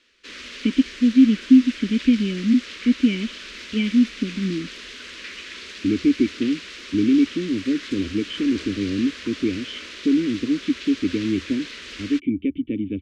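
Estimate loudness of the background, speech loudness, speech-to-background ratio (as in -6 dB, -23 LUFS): -35.5 LUFS, -21.5 LUFS, 14.0 dB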